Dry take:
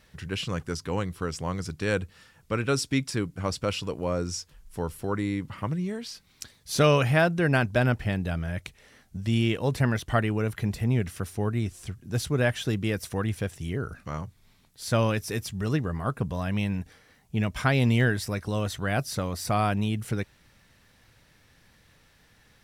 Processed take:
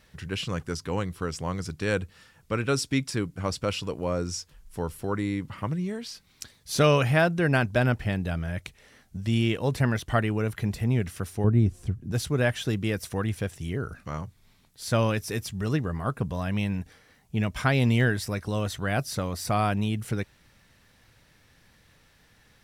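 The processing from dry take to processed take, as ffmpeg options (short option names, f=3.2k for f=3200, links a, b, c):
-filter_complex "[0:a]asettb=1/sr,asplit=3[a][b][c];[a]atrim=end=11.444[d];[b]atrim=start=11.44:end=12.12,asetpts=PTS-STARTPTS,afade=t=in:d=0.004:c=qsin,afade=t=out:st=0.676:d=0.004:c=qsin,tiltshelf=f=740:g=8[e];[c]atrim=start=12.116[f];[d][e]acrossfade=d=0.004:c1=hsin:c2=qsin[g];[g][f]acrossfade=d=0.004:c1=qsin:c2=hsin"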